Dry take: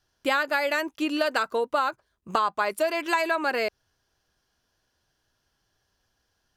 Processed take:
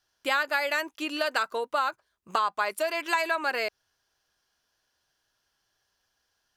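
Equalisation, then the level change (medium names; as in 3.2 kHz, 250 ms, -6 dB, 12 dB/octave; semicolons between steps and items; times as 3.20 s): bass shelf 440 Hz -11.5 dB; 0.0 dB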